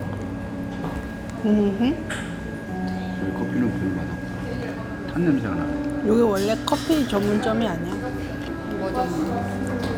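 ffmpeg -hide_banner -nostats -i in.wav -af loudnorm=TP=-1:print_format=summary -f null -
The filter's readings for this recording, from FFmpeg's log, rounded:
Input Integrated:    -24.8 LUFS
Input True Peak:      -4.3 dBTP
Input LRA:             3.8 LU
Input Threshold:     -34.8 LUFS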